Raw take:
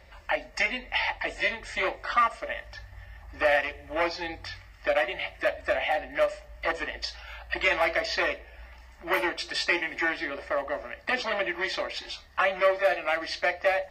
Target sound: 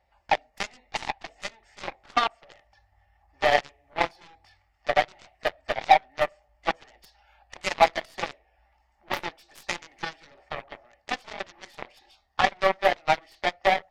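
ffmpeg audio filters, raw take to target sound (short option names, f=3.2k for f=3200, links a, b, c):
-af "equalizer=f=790:t=o:w=0.43:g=14,aeval=exprs='0.631*(cos(1*acos(clip(val(0)/0.631,-1,1)))-cos(1*PI/2))+0.0126*(cos(6*acos(clip(val(0)/0.631,-1,1)))-cos(6*PI/2))+0.1*(cos(7*acos(clip(val(0)/0.631,-1,1)))-cos(7*PI/2))':c=same"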